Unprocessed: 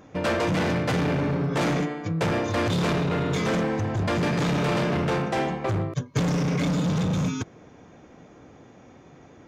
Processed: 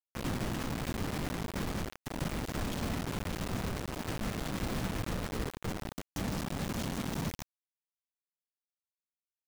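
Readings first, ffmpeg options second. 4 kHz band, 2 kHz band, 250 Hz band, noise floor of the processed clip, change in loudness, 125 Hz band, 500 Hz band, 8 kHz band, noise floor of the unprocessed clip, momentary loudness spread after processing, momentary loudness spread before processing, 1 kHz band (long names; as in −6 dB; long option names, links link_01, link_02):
−8.5 dB, −11.5 dB, −11.5 dB, below −85 dBFS, −11.5 dB, −12.0 dB, −14.5 dB, −4.5 dB, −51 dBFS, 4 LU, 3 LU, −12.0 dB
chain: -filter_complex "[0:a]highpass=frequency=390:poles=1,afftfilt=real='hypot(re,im)*cos(2*PI*random(0))':imag='hypot(re,im)*sin(2*PI*random(1))':win_size=512:overlap=0.75,acrossover=split=740[link_01][link_02];[link_02]acompressor=threshold=-49dB:ratio=16[link_03];[link_01][link_03]amix=inputs=2:normalize=0,afreqshift=-370,acrusher=bits=5:mix=0:aa=0.000001"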